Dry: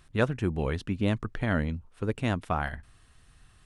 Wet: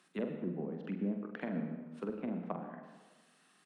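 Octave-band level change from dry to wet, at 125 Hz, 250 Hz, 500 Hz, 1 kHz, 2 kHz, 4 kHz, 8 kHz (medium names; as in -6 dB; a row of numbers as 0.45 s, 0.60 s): -15.0 dB, -6.0 dB, -9.0 dB, -13.5 dB, -16.5 dB, under -15 dB, under -15 dB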